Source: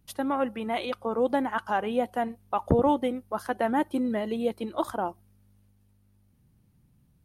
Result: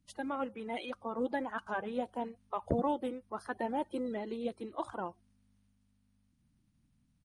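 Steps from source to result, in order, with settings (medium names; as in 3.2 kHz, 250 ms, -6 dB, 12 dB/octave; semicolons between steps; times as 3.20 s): coarse spectral quantiser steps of 30 dB; resampled via 22.05 kHz; trim -8.5 dB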